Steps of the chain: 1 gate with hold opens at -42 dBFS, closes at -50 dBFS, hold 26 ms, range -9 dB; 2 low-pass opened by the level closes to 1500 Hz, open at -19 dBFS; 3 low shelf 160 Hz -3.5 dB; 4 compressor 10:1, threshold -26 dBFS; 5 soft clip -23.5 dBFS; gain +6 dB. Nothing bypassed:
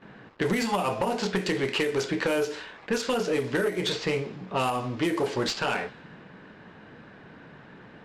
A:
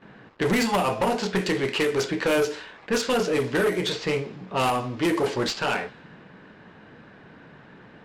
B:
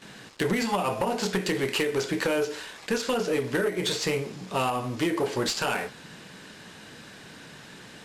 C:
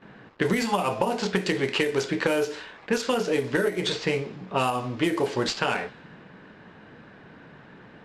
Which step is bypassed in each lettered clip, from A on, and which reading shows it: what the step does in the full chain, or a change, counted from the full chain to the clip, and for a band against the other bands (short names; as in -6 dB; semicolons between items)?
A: 4, mean gain reduction 2.5 dB; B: 2, 8 kHz band +4.0 dB; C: 5, distortion -16 dB